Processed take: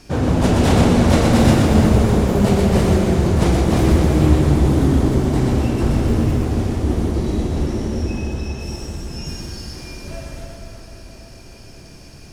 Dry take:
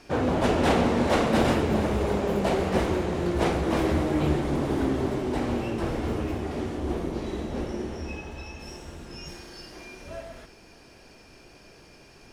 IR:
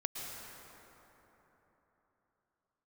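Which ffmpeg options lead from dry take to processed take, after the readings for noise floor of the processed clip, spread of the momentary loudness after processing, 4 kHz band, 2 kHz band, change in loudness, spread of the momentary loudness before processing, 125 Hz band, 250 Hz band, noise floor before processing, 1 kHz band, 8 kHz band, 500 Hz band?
-40 dBFS, 17 LU, +7.5 dB, +4.5 dB, +9.5 dB, 18 LU, +14.5 dB, +10.0 dB, -52 dBFS, +4.5 dB, +11.5 dB, +5.5 dB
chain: -filter_complex "[0:a]bass=f=250:g=11,treble=f=4000:g=9,asplit=2[s0][s1];[1:a]atrim=start_sample=2205,asetrate=41013,aresample=44100,adelay=124[s2];[s1][s2]afir=irnorm=-1:irlink=0,volume=0.794[s3];[s0][s3]amix=inputs=2:normalize=0,volume=1.12"

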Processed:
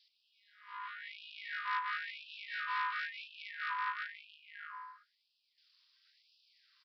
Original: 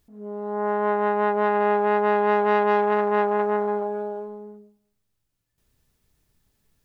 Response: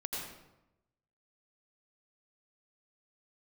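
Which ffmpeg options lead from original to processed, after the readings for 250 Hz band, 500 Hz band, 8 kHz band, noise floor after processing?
under -40 dB, under -40 dB, no reading, -79 dBFS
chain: -filter_complex "[0:a]aemphasis=mode=production:type=75kf,areverse,acompressor=threshold=0.0398:ratio=10,areverse,acrossover=split=2600[s0][s1];[s0]adelay=470[s2];[s2][s1]amix=inputs=2:normalize=0,aeval=exprs='val(0)*sin(2*PI*180*n/s)':c=same,aresample=11025,asoftclip=type=tanh:threshold=0.0251,aresample=44100,afftfilt=real='re*gte(b*sr/1024,890*pow(2500/890,0.5+0.5*sin(2*PI*0.98*pts/sr)))':imag='im*gte(b*sr/1024,890*pow(2500/890,0.5+0.5*sin(2*PI*0.98*pts/sr)))':win_size=1024:overlap=0.75,volume=3.16"

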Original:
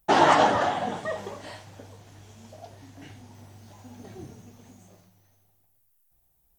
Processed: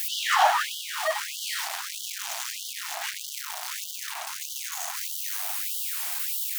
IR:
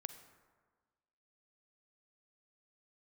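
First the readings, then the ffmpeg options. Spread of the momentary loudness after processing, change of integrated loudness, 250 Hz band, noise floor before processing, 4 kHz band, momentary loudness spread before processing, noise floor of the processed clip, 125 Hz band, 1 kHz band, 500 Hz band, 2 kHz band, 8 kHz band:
10 LU, -5.0 dB, under -40 dB, -67 dBFS, +7.0 dB, 22 LU, -37 dBFS, under -40 dB, -3.0 dB, -8.0 dB, +2.0 dB, +14.5 dB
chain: -af "aeval=exprs='val(0)+0.5*0.075*sgn(val(0))':c=same,afftfilt=real='re*gte(b*sr/1024,600*pow(2900/600,0.5+0.5*sin(2*PI*1.6*pts/sr)))':imag='im*gte(b*sr/1024,600*pow(2900/600,0.5+0.5*sin(2*PI*1.6*pts/sr)))':win_size=1024:overlap=0.75"

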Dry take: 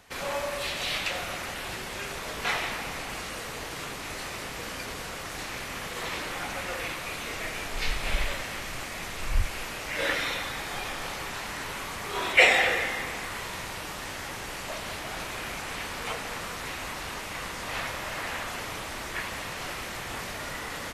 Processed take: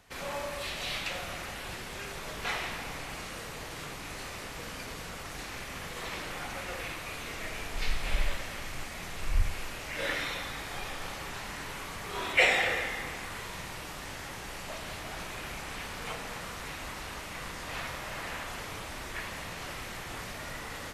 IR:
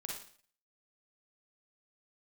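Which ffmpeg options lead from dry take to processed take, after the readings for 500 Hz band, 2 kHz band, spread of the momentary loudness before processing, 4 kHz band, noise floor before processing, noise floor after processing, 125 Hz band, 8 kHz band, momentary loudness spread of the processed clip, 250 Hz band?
-4.5 dB, -5.0 dB, 7 LU, -5.0 dB, -37 dBFS, -42 dBFS, -1.5 dB, -5.0 dB, 7 LU, -3.5 dB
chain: -filter_complex "[0:a]asplit=2[s0][s1];[1:a]atrim=start_sample=2205,lowshelf=f=190:g=11[s2];[s1][s2]afir=irnorm=-1:irlink=0,volume=0.668[s3];[s0][s3]amix=inputs=2:normalize=0,volume=0.398"

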